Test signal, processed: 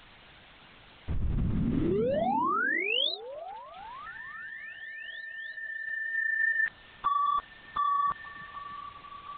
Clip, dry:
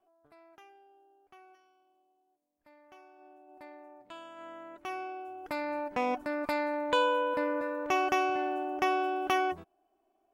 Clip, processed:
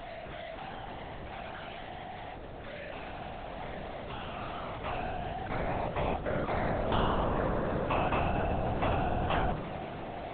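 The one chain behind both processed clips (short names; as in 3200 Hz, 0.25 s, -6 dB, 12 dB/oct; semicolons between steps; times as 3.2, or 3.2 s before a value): zero-crossing step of -36.5 dBFS; dynamic EQ 2300 Hz, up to -5 dB, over -48 dBFS, Q 4.5; in parallel at -1 dB: limiter -26 dBFS; on the sum: LPC vocoder at 8 kHz whisper; delay with a stepping band-pass 0.3 s, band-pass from 150 Hz, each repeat 0.7 oct, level -3 dB; gain -5.5 dB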